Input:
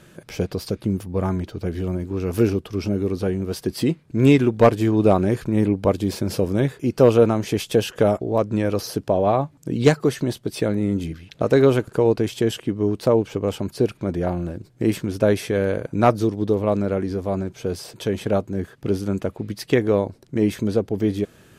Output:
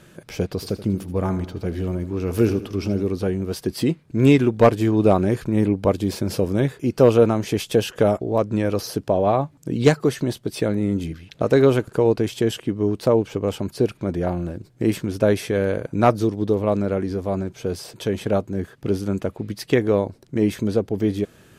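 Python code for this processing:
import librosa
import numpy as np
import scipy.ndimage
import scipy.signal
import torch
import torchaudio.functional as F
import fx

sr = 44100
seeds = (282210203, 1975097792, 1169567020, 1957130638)

y = fx.echo_feedback(x, sr, ms=79, feedback_pct=48, wet_db=-14.0, at=(0.6, 3.03), fade=0.02)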